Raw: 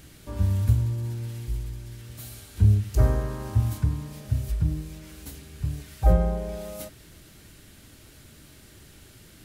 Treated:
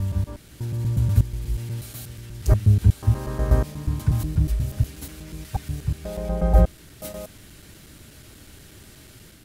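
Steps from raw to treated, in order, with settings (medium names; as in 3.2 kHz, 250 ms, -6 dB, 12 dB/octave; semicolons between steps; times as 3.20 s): slices played last to first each 121 ms, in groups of 5; level rider gain up to 5 dB; trim -1 dB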